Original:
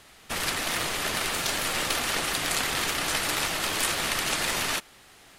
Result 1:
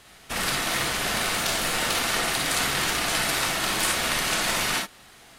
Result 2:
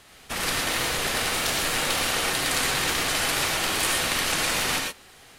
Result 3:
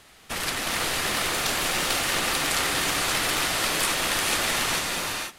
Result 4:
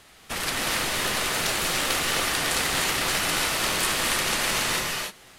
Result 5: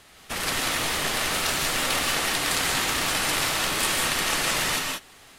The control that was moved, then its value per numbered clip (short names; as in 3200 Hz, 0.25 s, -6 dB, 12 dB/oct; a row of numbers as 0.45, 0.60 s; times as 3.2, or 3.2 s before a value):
non-linear reverb, gate: 80, 140, 530, 330, 210 ms